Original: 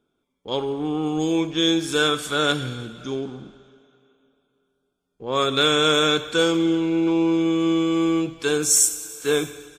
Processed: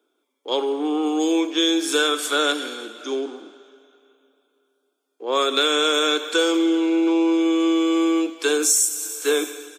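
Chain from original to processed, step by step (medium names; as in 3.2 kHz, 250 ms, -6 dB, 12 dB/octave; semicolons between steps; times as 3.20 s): steep high-pass 280 Hz 48 dB/octave; treble shelf 6.8 kHz +4.5 dB; compression 6:1, threshold -19 dBFS, peak gain reduction 8.5 dB; trim +3.5 dB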